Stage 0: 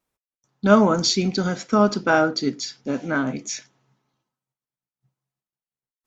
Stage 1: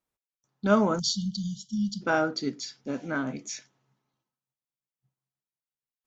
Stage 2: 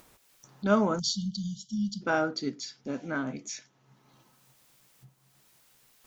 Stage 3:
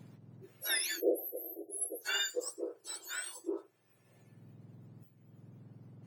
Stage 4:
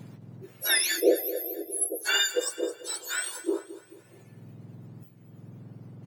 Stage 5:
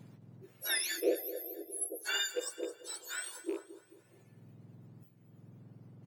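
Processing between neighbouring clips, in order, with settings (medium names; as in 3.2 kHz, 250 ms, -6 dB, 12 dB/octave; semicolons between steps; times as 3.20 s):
spectral selection erased 0.99–2.01 s, 220–2900 Hz; trim -7 dB
upward compressor, threshold -34 dBFS; trim -2 dB
spectrum inverted on a logarithmic axis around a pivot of 1.5 kHz; trim -3.5 dB
feedback delay 216 ms, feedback 44%, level -15.5 dB; trim +9 dB
rattle on loud lows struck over -36 dBFS, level -31 dBFS; trim -9 dB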